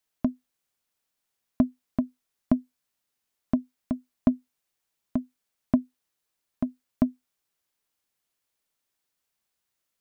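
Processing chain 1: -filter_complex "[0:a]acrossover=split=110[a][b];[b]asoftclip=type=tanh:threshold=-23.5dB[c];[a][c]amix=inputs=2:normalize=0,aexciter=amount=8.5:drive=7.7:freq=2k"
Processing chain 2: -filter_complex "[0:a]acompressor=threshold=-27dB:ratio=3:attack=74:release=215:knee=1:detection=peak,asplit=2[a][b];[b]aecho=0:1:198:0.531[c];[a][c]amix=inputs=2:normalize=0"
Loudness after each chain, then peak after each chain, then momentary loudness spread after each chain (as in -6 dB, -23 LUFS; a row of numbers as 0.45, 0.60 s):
-35.0, -31.5 LUFS; -10.0, -8.0 dBFS; 20, 8 LU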